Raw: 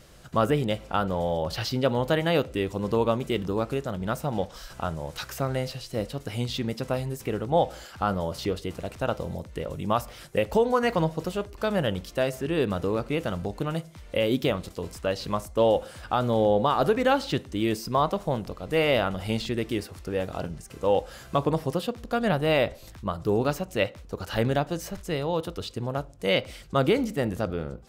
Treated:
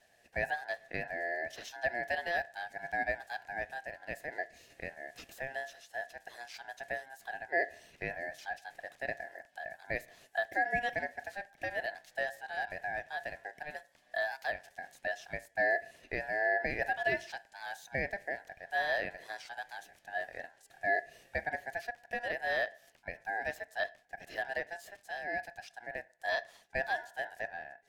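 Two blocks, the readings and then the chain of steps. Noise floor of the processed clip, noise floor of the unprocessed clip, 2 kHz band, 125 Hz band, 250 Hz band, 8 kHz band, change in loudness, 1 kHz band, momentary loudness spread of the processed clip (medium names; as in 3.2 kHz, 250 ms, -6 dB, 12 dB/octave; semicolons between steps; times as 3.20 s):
-67 dBFS, -47 dBFS, +2.0 dB, -24.0 dB, -23.0 dB, -13.0 dB, -9.5 dB, -9.0 dB, 13 LU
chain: ladder high-pass 420 Hz, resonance 50%; ring modulator 1.2 kHz; trim -2.5 dB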